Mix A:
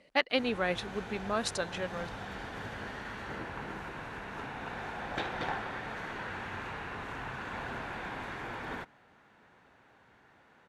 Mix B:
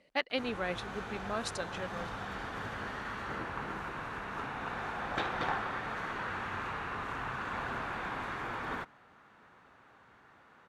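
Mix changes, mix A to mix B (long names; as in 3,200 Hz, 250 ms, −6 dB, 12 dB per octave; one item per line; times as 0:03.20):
speech −4.5 dB
background: add parametric band 1,200 Hz +7.5 dB 0.41 octaves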